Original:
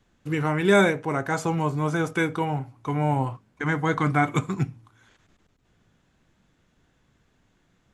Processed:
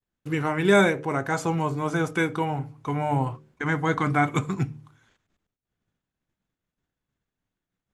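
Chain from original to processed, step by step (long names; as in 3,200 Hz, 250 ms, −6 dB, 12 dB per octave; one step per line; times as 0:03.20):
hum removal 75.25 Hz, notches 7
downward expander −52 dBFS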